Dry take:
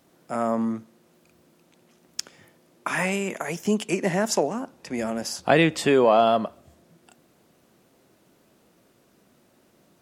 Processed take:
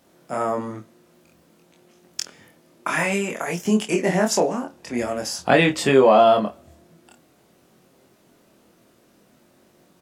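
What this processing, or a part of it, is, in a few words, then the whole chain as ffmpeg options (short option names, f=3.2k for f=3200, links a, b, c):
double-tracked vocal: -filter_complex "[0:a]asplit=2[a][b];[b]adelay=28,volume=-13dB[c];[a][c]amix=inputs=2:normalize=0,flanger=delay=22.5:depth=2.5:speed=0.51,volume=6dB"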